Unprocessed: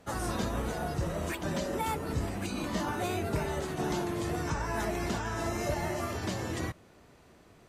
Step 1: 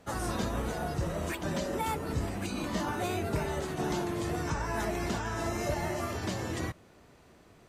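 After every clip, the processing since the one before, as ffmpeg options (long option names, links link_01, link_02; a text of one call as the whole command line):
ffmpeg -i in.wav -af "equalizer=frequency=11000:width=8:gain=-3" out.wav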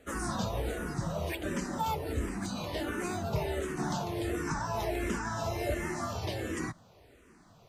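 ffmpeg -i in.wav -filter_complex "[0:a]asplit=2[link_01][link_02];[link_02]afreqshift=-1.4[link_03];[link_01][link_03]amix=inputs=2:normalize=1,volume=2dB" out.wav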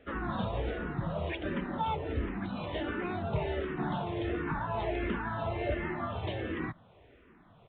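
ffmpeg -i in.wav -af "aresample=8000,aresample=44100" out.wav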